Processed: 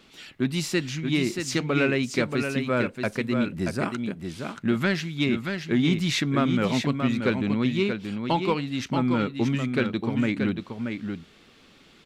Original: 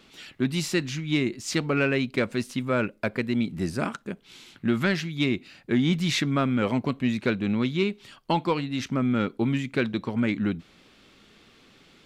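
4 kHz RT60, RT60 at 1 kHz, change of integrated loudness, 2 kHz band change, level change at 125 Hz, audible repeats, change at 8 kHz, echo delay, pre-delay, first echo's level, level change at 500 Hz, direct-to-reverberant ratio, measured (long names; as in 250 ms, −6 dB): no reverb audible, no reverb audible, +0.5 dB, +1.0 dB, +1.0 dB, 1, +1.0 dB, 630 ms, no reverb audible, −6.0 dB, +1.0 dB, no reverb audible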